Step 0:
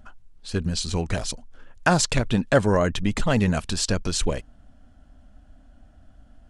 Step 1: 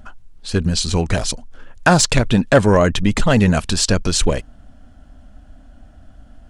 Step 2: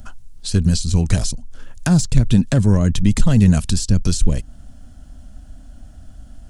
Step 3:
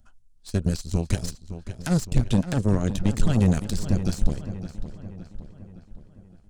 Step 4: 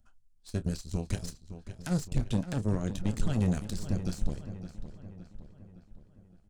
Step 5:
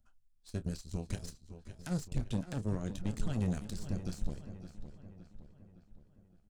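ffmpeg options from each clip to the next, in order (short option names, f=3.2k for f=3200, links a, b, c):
-af "acontrast=73,volume=1dB"
-filter_complex "[0:a]bass=f=250:g=7,treble=f=4k:g=14,acrossover=split=280[a][b];[b]acompressor=threshold=-22dB:ratio=10[c];[a][c]amix=inputs=2:normalize=0,volume=-2.5dB"
-filter_complex "[0:a]aeval=exprs='0.891*(cos(1*acos(clip(val(0)/0.891,-1,1)))-cos(1*PI/2))+0.0251*(cos(6*acos(clip(val(0)/0.891,-1,1)))-cos(6*PI/2))+0.1*(cos(7*acos(clip(val(0)/0.891,-1,1)))-cos(7*PI/2))':c=same,asplit=2[a][b];[b]adelay=564,lowpass=f=4k:p=1,volume=-11.5dB,asplit=2[c][d];[d]adelay=564,lowpass=f=4k:p=1,volume=0.53,asplit=2[e][f];[f]adelay=564,lowpass=f=4k:p=1,volume=0.53,asplit=2[g][h];[h]adelay=564,lowpass=f=4k:p=1,volume=0.53,asplit=2[i][j];[j]adelay=564,lowpass=f=4k:p=1,volume=0.53,asplit=2[k][l];[l]adelay=564,lowpass=f=4k:p=1,volume=0.53[m];[a][c][e][g][i][k][m]amix=inputs=7:normalize=0,volume=-7dB"
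-filter_complex "[0:a]asplit=2[a][b];[b]adelay=28,volume=-13dB[c];[a][c]amix=inputs=2:normalize=0,volume=-8dB"
-af "aecho=1:1:550:0.1,volume=-5.5dB"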